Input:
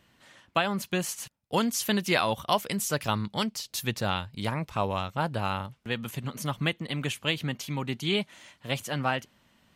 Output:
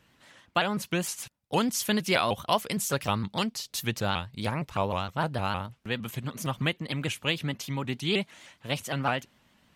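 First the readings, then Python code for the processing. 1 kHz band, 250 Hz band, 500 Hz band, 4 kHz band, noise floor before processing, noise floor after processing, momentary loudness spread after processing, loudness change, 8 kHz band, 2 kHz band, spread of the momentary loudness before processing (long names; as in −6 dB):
0.0 dB, 0.0 dB, 0.0 dB, 0.0 dB, −66 dBFS, −66 dBFS, 8 LU, 0.0 dB, 0.0 dB, 0.0 dB, 7 LU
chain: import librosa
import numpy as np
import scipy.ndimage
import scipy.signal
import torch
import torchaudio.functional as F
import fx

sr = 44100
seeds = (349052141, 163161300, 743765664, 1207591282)

y = fx.vibrato_shape(x, sr, shape='saw_up', rate_hz=6.5, depth_cents=160.0)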